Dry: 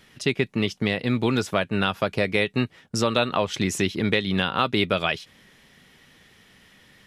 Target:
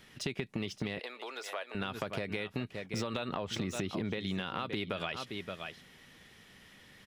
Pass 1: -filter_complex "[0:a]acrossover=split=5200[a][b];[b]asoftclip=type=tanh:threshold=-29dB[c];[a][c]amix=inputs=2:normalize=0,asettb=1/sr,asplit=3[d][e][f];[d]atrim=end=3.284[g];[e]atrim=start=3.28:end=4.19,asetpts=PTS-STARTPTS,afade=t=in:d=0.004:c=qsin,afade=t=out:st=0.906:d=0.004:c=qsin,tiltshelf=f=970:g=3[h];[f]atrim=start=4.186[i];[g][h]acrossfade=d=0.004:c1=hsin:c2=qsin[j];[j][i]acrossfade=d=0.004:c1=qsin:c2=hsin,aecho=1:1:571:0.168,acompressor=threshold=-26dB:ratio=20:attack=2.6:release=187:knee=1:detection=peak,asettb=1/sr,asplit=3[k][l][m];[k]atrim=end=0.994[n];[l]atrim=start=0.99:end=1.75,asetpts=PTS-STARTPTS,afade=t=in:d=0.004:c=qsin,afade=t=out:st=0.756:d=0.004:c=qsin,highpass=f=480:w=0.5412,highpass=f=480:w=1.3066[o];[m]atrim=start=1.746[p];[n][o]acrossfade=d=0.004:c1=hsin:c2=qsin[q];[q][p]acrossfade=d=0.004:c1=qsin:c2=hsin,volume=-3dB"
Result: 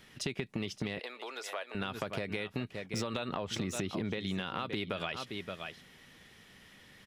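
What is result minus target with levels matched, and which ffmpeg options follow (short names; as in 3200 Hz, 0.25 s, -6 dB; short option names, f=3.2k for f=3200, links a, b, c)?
soft clip: distortion -8 dB
-filter_complex "[0:a]acrossover=split=5200[a][b];[b]asoftclip=type=tanh:threshold=-38.5dB[c];[a][c]amix=inputs=2:normalize=0,asettb=1/sr,asplit=3[d][e][f];[d]atrim=end=3.284[g];[e]atrim=start=3.28:end=4.19,asetpts=PTS-STARTPTS,afade=t=in:d=0.004:c=qsin,afade=t=out:st=0.906:d=0.004:c=qsin,tiltshelf=f=970:g=3[h];[f]atrim=start=4.186[i];[g][h]acrossfade=d=0.004:c1=hsin:c2=qsin[j];[j][i]acrossfade=d=0.004:c1=qsin:c2=hsin,aecho=1:1:571:0.168,acompressor=threshold=-26dB:ratio=20:attack=2.6:release=187:knee=1:detection=peak,asettb=1/sr,asplit=3[k][l][m];[k]atrim=end=0.994[n];[l]atrim=start=0.99:end=1.75,asetpts=PTS-STARTPTS,afade=t=in:d=0.004:c=qsin,afade=t=out:st=0.756:d=0.004:c=qsin,highpass=f=480:w=0.5412,highpass=f=480:w=1.3066[o];[m]atrim=start=1.746[p];[n][o]acrossfade=d=0.004:c1=hsin:c2=qsin[q];[q][p]acrossfade=d=0.004:c1=qsin:c2=hsin,volume=-3dB"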